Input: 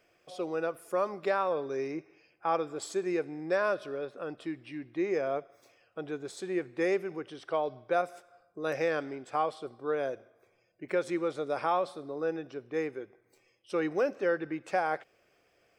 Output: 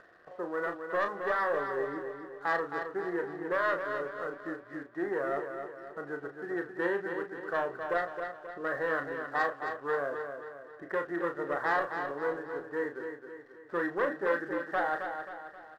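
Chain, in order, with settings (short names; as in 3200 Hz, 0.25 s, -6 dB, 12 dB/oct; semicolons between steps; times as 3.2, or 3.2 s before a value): self-modulated delay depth 0.23 ms; Chebyshev low-pass 1900 Hz, order 8; tilt shelf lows -9 dB, about 1200 Hz; upward compressor, threshold -49 dBFS; sample leveller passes 1; doubler 35 ms -7 dB; feedback echo 0.266 s, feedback 46%, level -7 dB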